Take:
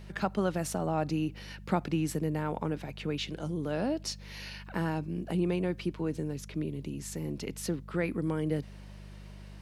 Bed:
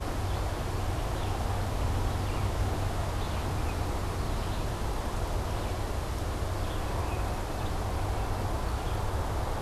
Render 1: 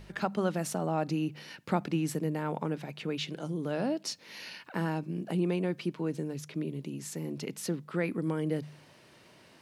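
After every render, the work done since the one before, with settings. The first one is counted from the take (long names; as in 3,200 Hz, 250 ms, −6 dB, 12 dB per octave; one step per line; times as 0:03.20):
hum removal 50 Hz, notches 4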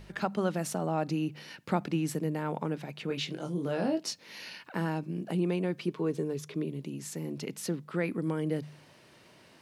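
0:03.08–0:04.11: double-tracking delay 22 ms −5 dB
0:05.88–0:06.65: hollow resonant body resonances 420/1,100/3,500 Hz, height 10 dB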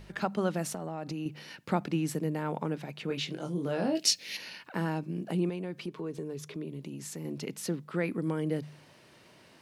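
0:00.70–0:01.26: downward compressor, threshold −32 dBFS
0:03.95–0:04.37: drawn EQ curve 730 Hz 0 dB, 1,000 Hz −8 dB, 2,400 Hz +11 dB
0:05.49–0:07.25: downward compressor 2 to 1, threshold −37 dBFS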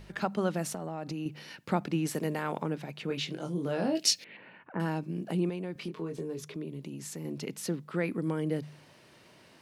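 0:02.05–0:02.61: ceiling on every frequency bin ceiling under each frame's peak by 12 dB
0:04.24–0:04.80: Gaussian smoothing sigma 4.4 samples
0:05.73–0:06.43: double-tracking delay 24 ms −5.5 dB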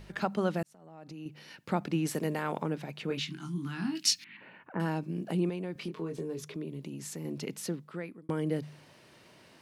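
0:00.63–0:01.96: fade in
0:03.19–0:04.41: Chebyshev band-stop filter 260–1,100 Hz
0:07.55–0:08.29: fade out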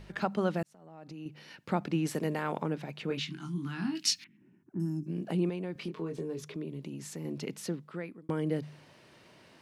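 0:04.27–0:05.07: gain on a spectral selection 390–5,100 Hz −26 dB
high-shelf EQ 7,900 Hz −6.5 dB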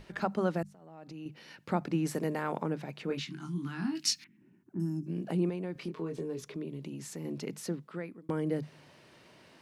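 mains-hum notches 50/100/150/200 Hz
dynamic equaliser 3,100 Hz, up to −5 dB, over −54 dBFS, Q 1.6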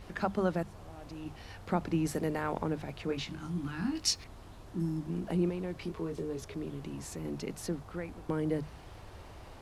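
mix in bed −19 dB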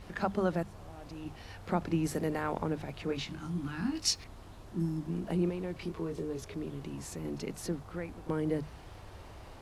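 echo ahead of the sound 30 ms −16.5 dB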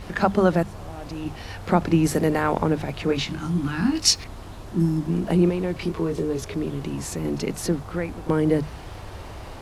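level +11.5 dB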